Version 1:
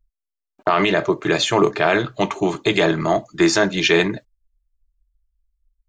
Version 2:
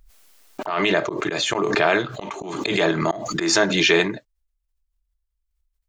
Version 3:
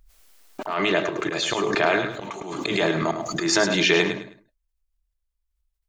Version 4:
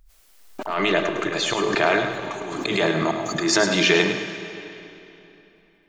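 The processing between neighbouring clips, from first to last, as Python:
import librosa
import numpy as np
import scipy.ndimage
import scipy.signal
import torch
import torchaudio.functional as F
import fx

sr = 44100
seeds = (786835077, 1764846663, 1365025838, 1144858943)

y1 = fx.low_shelf(x, sr, hz=150.0, db=-9.5)
y1 = fx.auto_swell(y1, sr, attack_ms=199.0)
y1 = fx.pre_swell(y1, sr, db_per_s=39.0)
y1 = y1 * librosa.db_to_amplitude(-1.0)
y2 = fx.echo_feedback(y1, sr, ms=105, feedback_pct=27, wet_db=-8.0)
y2 = y2 * librosa.db_to_amplitude(-2.5)
y3 = fx.rev_freeverb(y2, sr, rt60_s=3.2, hf_ratio=0.85, predelay_ms=70, drr_db=9.5)
y3 = y3 * librosa.db_to_amplitude(1.0)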